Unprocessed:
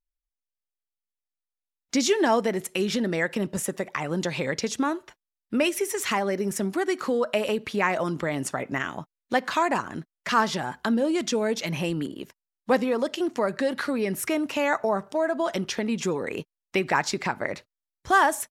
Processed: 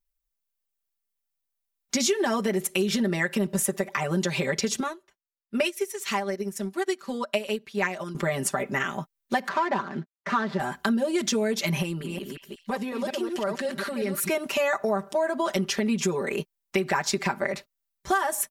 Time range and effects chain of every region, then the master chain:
4.80–8.15 s: dynamic bell 4.3 kHz, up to +5 dB, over -43 dBFS, Q 0.71 + upward expansion 2.5:1, over -31 dBFS
9.48–10.60 s: median filter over 15 samples + band-pass 130–3800 Hz
11.82–14.29 s: chunks repeated in reverse 183 ms, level -5 dB + compression 2:1, threshold -34 dBFS + repeats whose band climbs or falls 223 ms, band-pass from 2.9 kHz, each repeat 0.7 oct, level -9 dB
whole clip: treble shelf 11 kHz +11 dB; comb 5.1 ms, depth 97%; compression, threshold -21 dBFS

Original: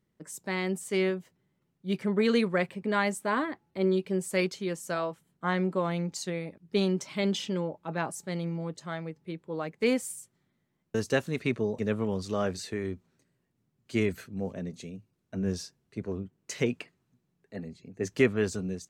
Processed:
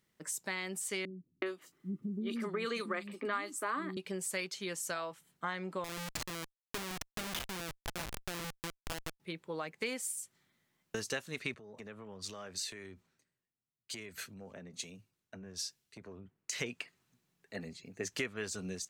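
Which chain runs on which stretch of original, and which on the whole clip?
1.05–3.97 s: small resonant body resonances 300/1200 Hz, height 13 dB, ringing for 30 ms + three bands offset in time lows, mids, highs 370/410 ms, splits 250/3700 Hz
5.84–9.20 s: high-pass 68 Hz 6 dB/octave + Schmitt trigger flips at -31 dBFS
11.54–16.53 s: compression 10:1, threshold -41 dBFS + three bands expanded up and down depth 70%
whole clip: tilt shelf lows -7 dB, about 810 Hz; compression 4:1, threshold -37 dBFS; trim +1 dB

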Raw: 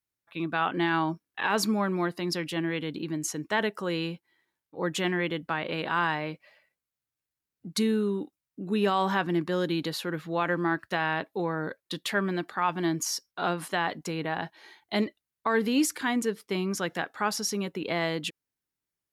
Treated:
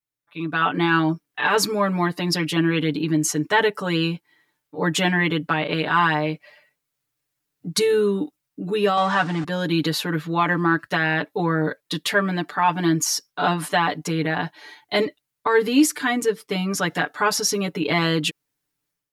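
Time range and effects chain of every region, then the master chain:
8.97–9.44 s: jump at every zero crossing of -34 dBFS + cabinet simulation 130–7800 Hz, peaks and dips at 350 Hz -8 dB, 950 Hz +4 dB, 1.4 kHz +5 dB, 6.3 kHz -3 dB
whole clip: comb 6.8 ms, depth 99%; level rider gain up to 12.5 dB; trim -5 dB

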